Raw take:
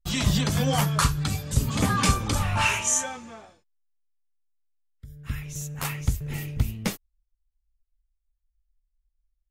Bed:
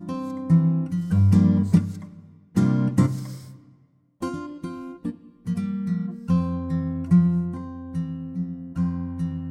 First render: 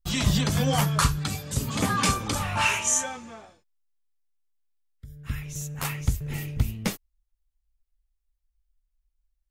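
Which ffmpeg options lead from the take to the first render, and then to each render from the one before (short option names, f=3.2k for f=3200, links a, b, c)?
-filter_complex "[0:a]asettb=1/sr,asplit=3[a][b][c];[a]atrim=end=1.184[d];[b]atrim=start=1.18:end=2.85,asetpts=PTS-STARTPTS,afade=t=in:d=0.004:c=qsin,afade=t=out:st=1.666:d=0.004:c=qsin,lowshelf=f=92:g=-11.5[e];[c]atrim=start=2.846[f];[d][e]acrossfade=d=0.004:c1=hsin:c2=qsin[g];[g][f]acrossfade=d=0.004:c1=qsin:c2=hsin"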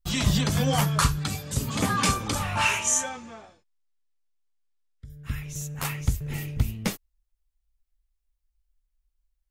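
-filter_complex "[0:a]asettb=1/sr,asplit=3[a][b][c];[a]atrim=end=3.094[d];[b]atrim=start=3.09:end=5.1,asetpts=PTS-STARTPTS,afade=t=in:d=0.004:c=qsin,afade=t=out:st=2.006:d=0.004:c=qsin,lowpass=7.9k[e];[c]atrim=start=5.096[f];[d][e]acrossfade=d=0.004:c1=hsin:c2=qsin[g];[g][f]acrossfade=d=0.004:c1=qsin:c2=hsin"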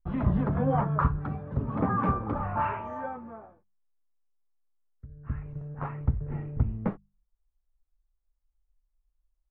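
-af "lowpass=f=1.3k:w=0.5412,lowpass=f=1.3k:w=1.3066,bandreject=f=50:t=h:w=6,bandreject=f=100:t=h:w=6,bandreject=f=150:t=h:w=6,bandreject=f=200:t=h:w=6"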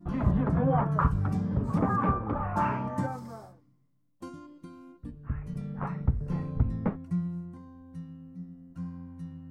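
-filter_complex "[1:a]volume=-13.5dB[a];[0:a][a]amix=inputs=2:normalize=0"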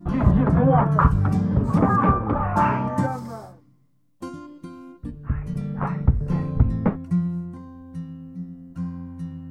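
-af "volume=8dB"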